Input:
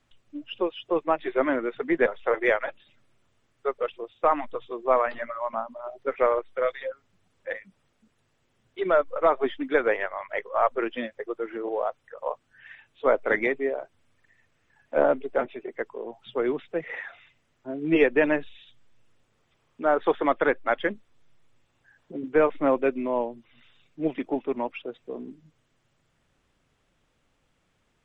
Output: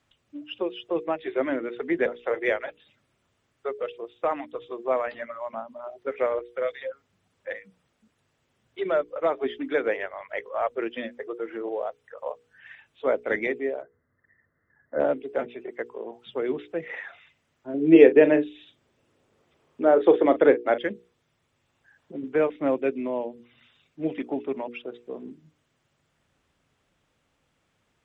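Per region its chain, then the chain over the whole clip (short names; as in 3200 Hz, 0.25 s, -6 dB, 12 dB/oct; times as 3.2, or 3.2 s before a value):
13.82–15 brick-wall FIR low-pass 2100 Hz + bell 830 Hz -9.5 dB 0.57 oct
17.74–20.78 bell 400 Hz +9.5 dB 1.8 oct + doubler 39 ms -13 dB
whole clip: HPF 46 Hz; notches 60/120/180/240/300/360/420/480 Hz; dynamic EQ 1100 Hz, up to -8 dB, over -39 dBFS, Q 1.2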